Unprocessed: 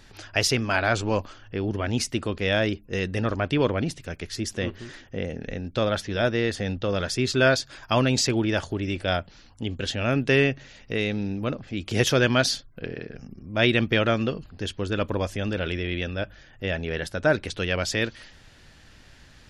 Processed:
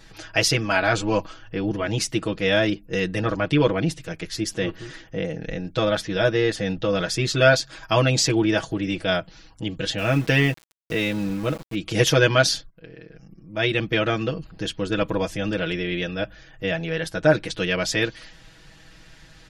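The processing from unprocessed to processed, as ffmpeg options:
ffmpeg -i in.wav -filter_complex "[0:a]asettb=1/sr,asplit=3[link_01][link_02][link_03];[link_01]atrim=end=9.984[link_04];[link_02]atrim=start=9.98:end=11.75,asetpts=PTS-STARTPTS,afade=type=in:duration=0.004:curve=qsin,afade=type=out:start_time=1.766:duration=0.004:curve=qsin,aeval=exprs='val(0)*gte(abs(val(0)),0.0141)':channel_layout=same[link_05];[link_03]atrim=start=11.746[link_06];[link_04][link_05]acrossfade=duration=0.004:curve1=hsin:curve2=qsin[link_07];[link_07][link_06]acrossfade=duration=0.004:curve1=qsin:curve2=hsin,asplit=2[link_08][link_09];[link_08]atrim=end=12.7,asetpts=PTS-STARTPTS,afade=type=out:start_time=12.696:duration=0.004:curve=hsin:silence=0.149624[link_10];[link_09]atrim=start=12.7,asetpts=PTS-STARTPTS,afade=type=in:duration=1.84:silence=0.149624[link_11];[link_10][link_11]concat=n=2:v=0:a=1,aecho=1:1:6.2:0.99" out.wav

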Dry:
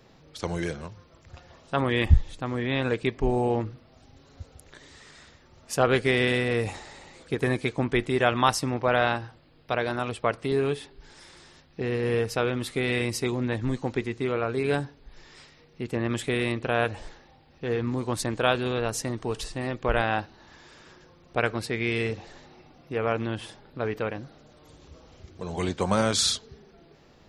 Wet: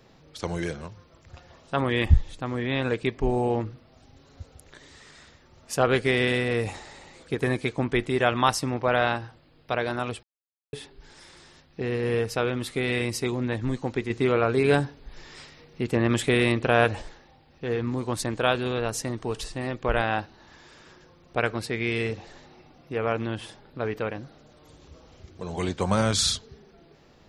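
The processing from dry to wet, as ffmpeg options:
ffmpeg -i in.wav -filter_complex "[0:a]asettb=1/sr,asplit=3[link_01][link_02][link_03];[link_01]atrim=end=14.104[link_04];[link_02]atrim=start=14.1:end=17.02,asetpts=PTS-STARTPTS,afade=type=in:duration=0.004:curve=qsin,afade=type=out:start_time=2.916:duration=0.004:curve=qsin,acontrast=26[link_05];[link_03]atrim=start=17.016[link_06];[link_04][link_05]acrossfade=duration=0.004:curve1=hsin:curve2=qsin[link_07];[link_07][link_06]acrossfade=duration=0.004:curve1=qsin:curve2=hsin,asettb=1/sr,asplit=3[link_08][link_09][link_10];[link_08]atrim=end=25.664[link_11];[link_09]atrim=start=25.66:end=26.42,asetpts=PTS-STARTPTS,afade=type=in:duration=0.004:curve=qsin,afade=type=out:start_time=0.756:duration=0.004:curve=qsin,asubboost=boost=9.5:cutoff=200[link_12];[link_10]atrim=start=26.416[link_13];[link_11][link_12]acrossfade=duration=0.004:curve1=hsin:curve2=qsin[link_14];[link_14][link_13]acrossfade=duration=0.004:curve1=qsin:curve2=hsin,asplit=3[link_15][link_16][link_17];[link_15]atrim=end=10.23,asetpts=PTS-STARTPTS,afade=type=out:start_time=10.226:duration=0.004:curve=hsin[link_18];[link_16]atrim=start=10.23:end=10.73,asetpts=PTS-STARTPTS,volume=0[link_19];[link_17]atrim=start=10.73,asetpts=PTS-STARTPTS,afade=type=in:duration=0.004:curve=hsin[link_20];[link_18][link_19][link_20]concat=n=3:v=0:a=1" out.wav

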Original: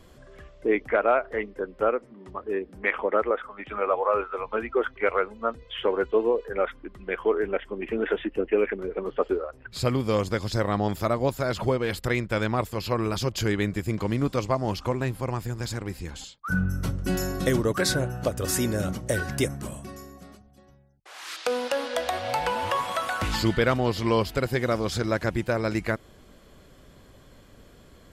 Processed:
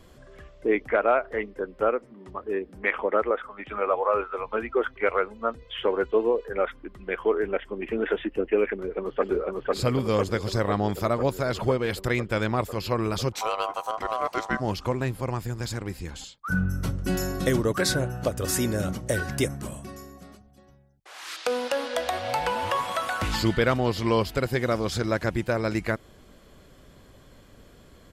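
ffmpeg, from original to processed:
ffmpeg -i in.wav -filter_complex "[0:a]asplit=2[link_01][link_02];[link_02]afade=type=in:start_time=8.7:duration=0.01,afade=type=out:start_time=9.3:duration=0.01,aecho=0:1:500|1000|1500|2000|2500|3000|3500|4000|4500|5000|5500|6000:0.891251|0.668438|0.501329|0.375996|0.281997|0.211498|0.158624|0.118968|0.0892257|0.0669193|0.0501895|0.0376421[link_03];[link_01][link_03]amix=inputs=2:normalize=0,asplit=3[link_04][link_05][link_06];[link_04]afade=type=out:start_time=13.32:duration=0.02[link_07];[link_05]aeval=exprs='val(0)*sin(2*PI*880*n/s)':channel_layout=same,afade=type=in:start_time=13.32:duration=0.02,afade=type=out:start_time=14.59:duration=0.02[link_08];[link_06]afade=type=in:start_time=14.59:duration=0.02[link_09];[link_07][link_08][link_09]amix=inputs=3:normalize=0" out.wav

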